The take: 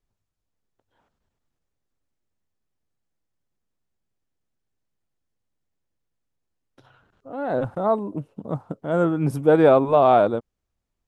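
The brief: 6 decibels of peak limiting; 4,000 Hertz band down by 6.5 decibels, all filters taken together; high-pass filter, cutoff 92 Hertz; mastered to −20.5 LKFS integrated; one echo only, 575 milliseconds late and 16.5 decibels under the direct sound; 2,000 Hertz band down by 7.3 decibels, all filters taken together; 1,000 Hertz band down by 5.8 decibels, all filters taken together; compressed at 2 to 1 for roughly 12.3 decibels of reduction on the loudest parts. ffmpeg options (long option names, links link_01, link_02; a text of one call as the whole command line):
ffmpeg -i in.wav -af "highpass=92,equalizer=frequency=1000:width_type=o:gain=-8,equalizer=frequency=2000:width_type=o:gain=-5.5,equalizer=frequency=4000:width_type=o:gain=-5.5,acompressor=threshold=-36dB:ratio=2,alimiter=limit=-24dB:level=0:latency=1,aecho=1:1:575:0.15,volume=14.5dB" out.wav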